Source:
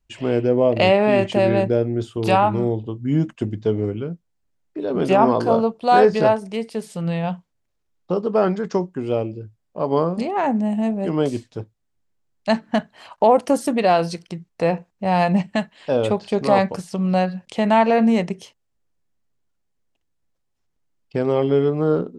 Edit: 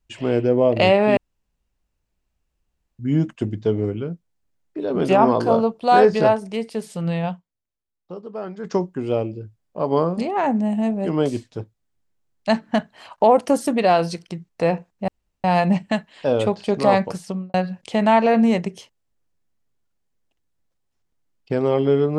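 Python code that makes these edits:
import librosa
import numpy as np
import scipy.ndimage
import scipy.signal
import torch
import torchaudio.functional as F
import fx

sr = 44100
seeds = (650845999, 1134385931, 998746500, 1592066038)

y = fx.studio_fade_out(x, sr, start_s=16.87, length_s=0.31)
y = fx.edit(y, sr, fx.room_tone_fill(start_s=1.17, length_s=1.82),
    fx.fade_down_up(start_s=7.25, length_s=1.48, db=-13.0, fade_s=0.17),
    fx.insert_room_tone(at_s=15.08, length_s=0.36), tone=tone)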